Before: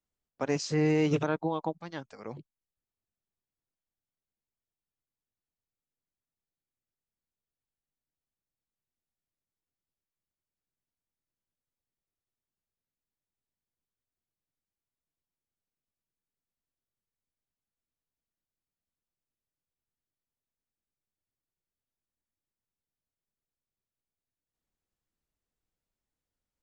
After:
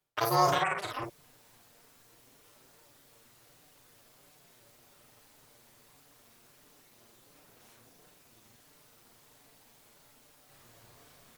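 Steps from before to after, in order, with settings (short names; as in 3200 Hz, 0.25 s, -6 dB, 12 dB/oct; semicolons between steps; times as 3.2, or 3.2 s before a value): HPF 100 Hz 6 dB/oct; reverse; upward compressor, threshold -33 dBFS; reverse; AM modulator 91 Hz, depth 95%; chorus voices 4, 0.63 Hz, delay 18 ms, depth 2.6 ms; on a send: loudspeakers at several distances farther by 28 m -7 dB, 42 m -5 dB; on the sum: speed mistake 33 rpm record played at 78 rpm; gain +7.5 dB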